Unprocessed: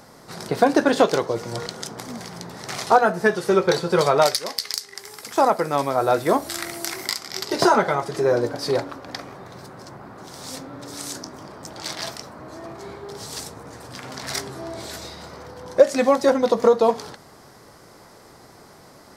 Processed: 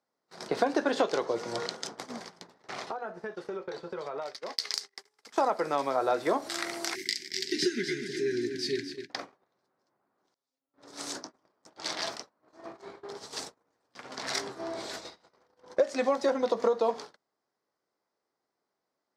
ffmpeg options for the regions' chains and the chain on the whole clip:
ffmpeg -i in.wav -filter_complex "[0:a]asettb=1/sr,asplit=3[link_01][link_02][link_03];[link_01]atrim=end=2.544[link_04];[link_02]atrim=start=2.54:end=4.53,asetpts=PTS-STARTPTS,afade=type=in:duration=0.004:curve=qsin,afade=type=out:start_time=1.986:duration=0.004:curve=qsin,equalizer=frequency=10000:width_type=o:width=2.4:gain=-9.5,acompressor=threshold=-29dB:ratio=16:attack=3.2:release=140:knee=1:detection=peak[link_05];[link_03]atrim=start=4.526[link_06];[link_04][link_05]acrossfade=duration=0.004:curve1=hsin:curve2=qsin[link_07];[link_07][link_06]acrossfade=duration=0.004:curve1=qsin:curve2=hsin,asettb=1/sr,asplit=3[link_08][link_09][link_10];[link_08]atrim=end=6.954[link_11];[link_09]atrim=start=6.95:end=9.1,asetpts=PTS-STARTPTS,afade=type=in:duration=0.004:curve=qsin,afade=type=out:start_time=2.146:duration=0.004:curve=qsin,asuperstop=centerf=810:order=20:qfactor=0.65,aecho=1:1:249|498|747|996:0.316|0.133|0.0558|0.0234,atrim=end_sample=94815[link_12];[link_10]atrim=start=9.096[link_13];[link_11][link_12]acrossfade=duration=0.004:curve1=hsin:curve2=qsin[link_14];[link_14][link_13]acrossfade=duration=0.004:curve1=qsin:curve2=hsin,asettb=1/sr,asplit=3[link_15][link_16][link_17];[link_15]atrim=end=10.344[link_18];[link_16]atrim=start=10.34:end=10.74,asetpts=PTS-STARTPTS,afade=type=in:duration=0.004:curve=qsin,afade=type=out:start_time=0.396:duration=0.004:curve=qsin,agate=range=-33dB:threshold=-29dB:ratio=3:release=100:detection=peak,aecho=1:1:7.3:0.65,atrim=end_sample=17640,acompressor=threshold=-52dB:ratio=6:attack=3.2:release=140:knee=1:detection=peak[link_19];[link_17]atrim=start=10.736[link_20];[link_18][link_19]acrossfade=duration=0.004:curve1=hsin:curve2=qsin[link_21];[link_21][link_20]acrossfade=duration=0.004:curve1=qsin:curve2=hsin,acrossover=split=220 7700:gain=0.158 1 0.158[link_22][link_23][link_24];[link_22][link_23][link_24]amix=inputs=3:normalize=0,acompressor=threshold=-23dB:ratio=2.5,agate=range=-33dB:threshold=-36dB:ratio=16:detection=peak,volume=-2.5dB" out.wav

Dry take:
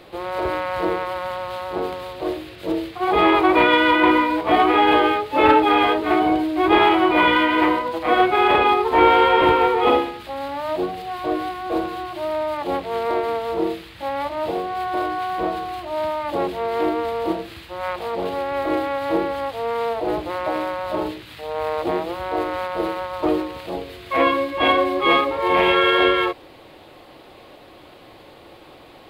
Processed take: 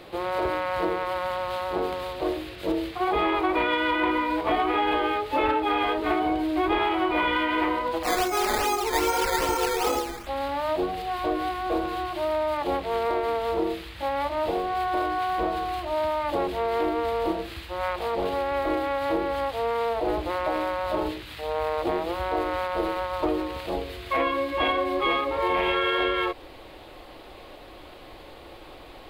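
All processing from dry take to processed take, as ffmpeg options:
ffmpeg -i in.wav -filter_complex "[0:a]asettb=1/sr,asplit=3[link_01][link_02][link_03];[link_01]atrim=end=8.034[link_04];[link_02]atrim=start=8.03:end=10.27,asetpts=PTS-STARTPTS,afade=type=in:duration=0.004:curve=qsin,afade=type=out:start_time=2.236:duration=0.004:curve=qsin,flanger=delay=16.5:depth=5.9:speed=1.5,acrusher=samples=11:mix=1:aa=0.000001:lfo=1:lforange=11:lforate=2.5[link_05];[link_03]atrim=start=10.266[link_06];[link_04][link_05]acrossfade=duration=0.004:curve1=hsin:curve2=qsin[link_07];[link_07][link_06]acrossfade=duration=0.004:curve1=qsin:curve2=hsin,asubboost=boost=5.5:cutoff=53,acompressor=threshold=-22dB:ratio=4" out.wav

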